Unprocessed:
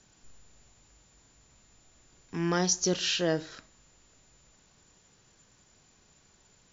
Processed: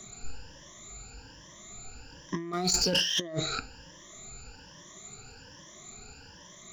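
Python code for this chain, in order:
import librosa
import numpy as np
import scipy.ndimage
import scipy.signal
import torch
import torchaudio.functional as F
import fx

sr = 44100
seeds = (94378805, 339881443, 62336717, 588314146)

y = fx.spec_ripple(x, sr, per_octave=1.2, drift_hz=1.2, depth_db=23)
y = fx.over_compress(y, sr, threshold_db=-34.0, ratio=-1.0)
y = fx.leveller(y, sr, passes=2, at=(2.53, 3.2))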